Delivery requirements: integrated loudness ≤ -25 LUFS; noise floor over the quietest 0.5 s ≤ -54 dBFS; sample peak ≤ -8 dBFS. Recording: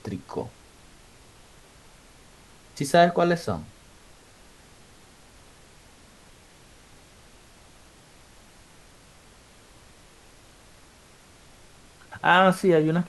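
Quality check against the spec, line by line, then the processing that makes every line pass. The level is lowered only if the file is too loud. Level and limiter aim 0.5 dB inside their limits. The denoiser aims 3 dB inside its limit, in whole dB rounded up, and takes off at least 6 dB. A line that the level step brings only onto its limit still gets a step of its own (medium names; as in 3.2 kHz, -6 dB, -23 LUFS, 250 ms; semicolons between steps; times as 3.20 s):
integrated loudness -22.0 LUFS: fail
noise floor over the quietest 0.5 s -53 dBFS: fail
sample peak -4.0 dBFS: fail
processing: trim -3.5 dB; peak limiter -8.5 dBFS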